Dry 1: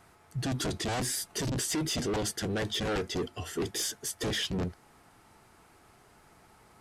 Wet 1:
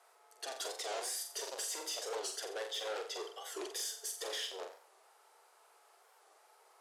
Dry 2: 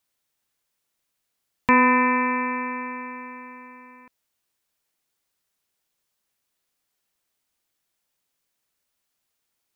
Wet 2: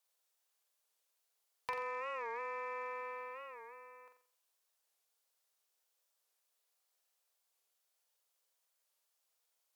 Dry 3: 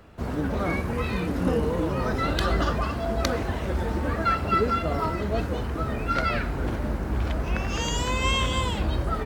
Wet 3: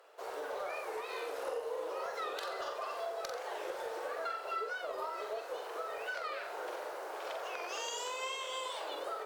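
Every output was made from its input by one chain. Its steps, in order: steep high-pass 430 Hz 48 dB/octave; peaking EQ 2 kHz -4.5 dB 1.2 oct; compression 10:1, threshold -33 dBFS; saturation -25.5 dBFS; Chebyshev shaper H 2 -24 dB, 4 -39 dB, 7 -33 dB, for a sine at -25.5 dBFS; flutter echo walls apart 7.6 m, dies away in 0.46 s; warped record 45 rpm, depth 160 cents; trim -3 dB

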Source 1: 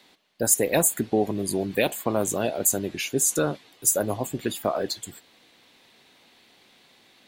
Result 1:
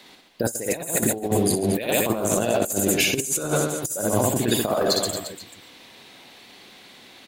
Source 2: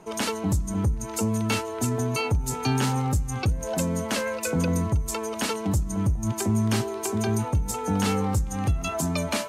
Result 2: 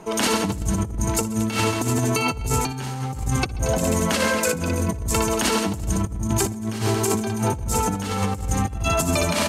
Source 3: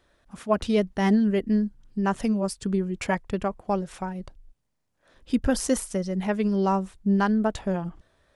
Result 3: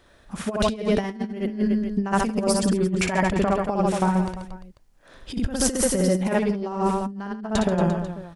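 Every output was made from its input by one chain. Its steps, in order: reverse bouncing-ball echo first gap 60 ms, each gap 1.25×, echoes 5; compressor with a negative ratio -26 dBFS, ratio -0.5; trim +4 dB

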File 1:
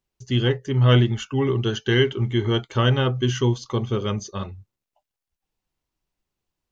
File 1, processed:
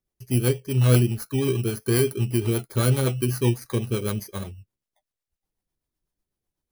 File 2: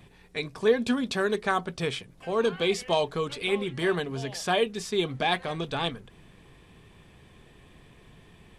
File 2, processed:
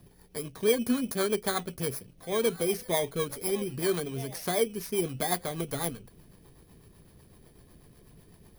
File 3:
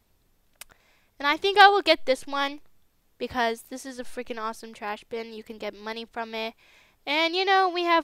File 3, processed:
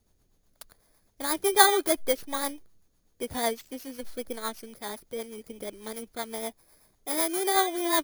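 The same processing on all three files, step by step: bit-reversed sample order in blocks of 16 samples; rotary cabinet horn 8 Hz

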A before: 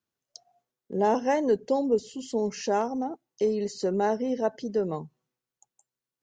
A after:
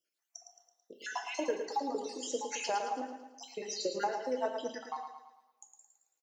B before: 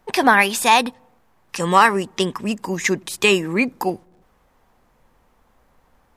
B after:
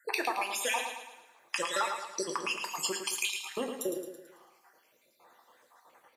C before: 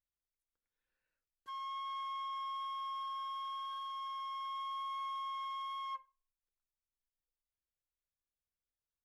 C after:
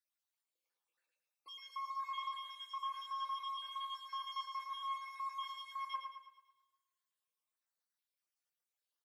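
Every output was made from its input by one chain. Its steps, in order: random holes in the spectrogram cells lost 61%; high-pass 600 Hz 12 dB/octave; compression 10:1, threshold -35 dBFS; feedback delay 110 ms, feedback 47%, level -7 dB; two-slope reverb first 0.45 s, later 2 s, from -26 dB, DRR 5 dB; trim +4.5 dB

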